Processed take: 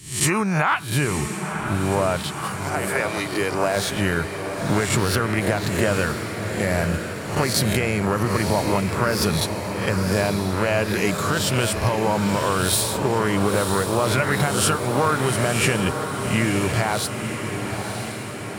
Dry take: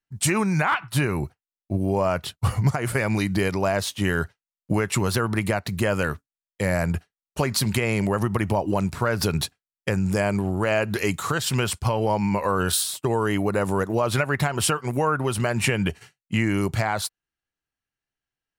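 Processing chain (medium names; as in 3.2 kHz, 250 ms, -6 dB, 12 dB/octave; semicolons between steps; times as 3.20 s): reverse spectral sustain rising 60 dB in 0.47 s; 2.23–3.75 s: high-pass 610 Hz -> 220 Hz 24 dB/octave; echo that smears into a reverb 975 ms, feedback 64%, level -7 dB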